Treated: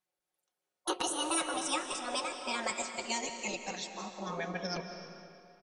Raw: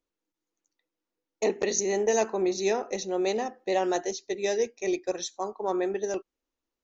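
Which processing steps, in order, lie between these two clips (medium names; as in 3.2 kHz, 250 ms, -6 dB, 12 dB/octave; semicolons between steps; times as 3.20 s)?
gliding tape speed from 170% -> 73%; spectral gate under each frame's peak -10 dB weak; comb 5.5 ms, depth 48%; reverberation RT60 2.4 s, pre-delay 115 ms, DRR 6.5 dB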